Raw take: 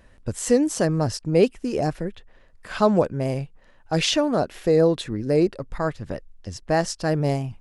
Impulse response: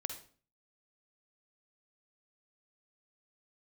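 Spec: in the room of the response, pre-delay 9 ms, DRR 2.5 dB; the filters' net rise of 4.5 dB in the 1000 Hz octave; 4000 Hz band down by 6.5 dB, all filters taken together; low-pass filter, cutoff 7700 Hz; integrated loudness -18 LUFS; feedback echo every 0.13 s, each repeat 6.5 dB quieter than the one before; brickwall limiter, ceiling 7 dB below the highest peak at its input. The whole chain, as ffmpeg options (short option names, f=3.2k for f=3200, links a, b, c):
-filter_complex "[0:a]lowpass=7.7k,equalizer=f=1k:t=o:g=6.5,equalizer=f=4k:t=o:g=-9,alimiter=limit=-11.5dB:level=0:latency=1,aecho=1:1:130|260|390|520|650|780:0.473|0.222|0.105|0.0491|0.0231|0.0109,asplit=2[a][b];[1:a]atrim=start_sample=2205,adelay=9[c];[b][c]afir=irnorm=-1:irlink=0,volume=-2dB[d];[a][d]amix=inputs=2:normalize=0,volume=3.5dB"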